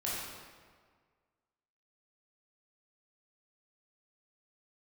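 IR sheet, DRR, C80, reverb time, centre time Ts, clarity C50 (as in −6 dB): −7.5 dB, 0.5 dB, 1.7 s, 106 ms, −2.0 dB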